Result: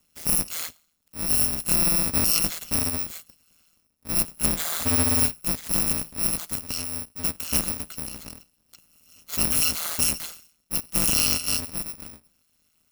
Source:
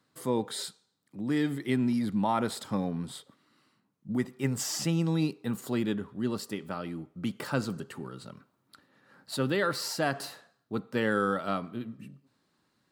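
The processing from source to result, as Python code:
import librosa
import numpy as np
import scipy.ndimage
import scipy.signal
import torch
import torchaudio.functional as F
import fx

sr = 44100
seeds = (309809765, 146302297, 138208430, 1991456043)

y = fx.bit_reversed(x, sr, seeds[0], block=128)
y = y * np.sin(2.0 * np.pi * 81.0 * np.arange(len(y)) / sr)
y = F.gain(torch.from_numpy(y), 8.5).numpy()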